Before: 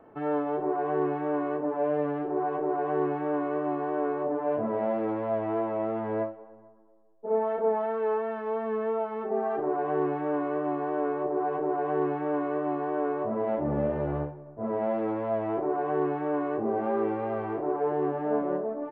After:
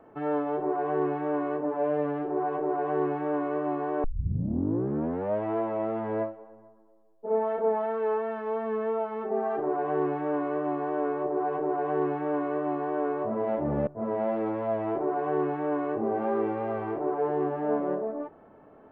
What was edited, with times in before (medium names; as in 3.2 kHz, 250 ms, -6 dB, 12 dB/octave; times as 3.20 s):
4.04 s: tape start 1.38 s
13.87–14.49 s: delete